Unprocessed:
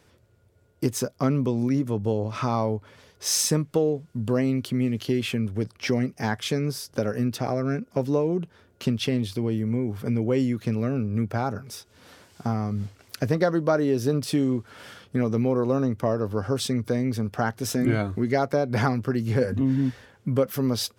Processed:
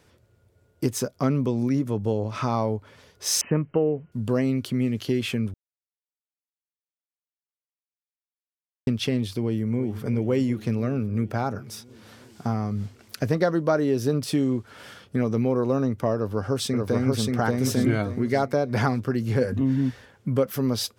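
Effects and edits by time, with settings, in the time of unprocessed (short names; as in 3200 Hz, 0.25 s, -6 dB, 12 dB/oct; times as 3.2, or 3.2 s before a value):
3.41–4.12 brick-wall FIR low-pass 3100 Hz
5.54–8.87 mute
9.43–10.05 echo throw 0.35 s, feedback 75%, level -13 dB
16.15–17.31 echo throw 0.58 s, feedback 30%, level -1.5 dB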